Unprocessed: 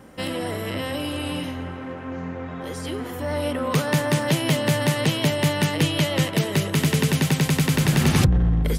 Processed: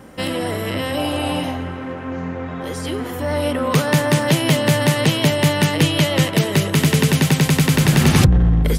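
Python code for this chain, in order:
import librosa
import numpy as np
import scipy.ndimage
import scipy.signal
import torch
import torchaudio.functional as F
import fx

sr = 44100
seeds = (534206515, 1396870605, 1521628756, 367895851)

y = fx.peak_eq(x, sr, hz=740.0, db=10.5, octaves=0.59, at=(0.97, 1.57))
y = F.gain(torch.from_numpy(y), 5.0).numpy()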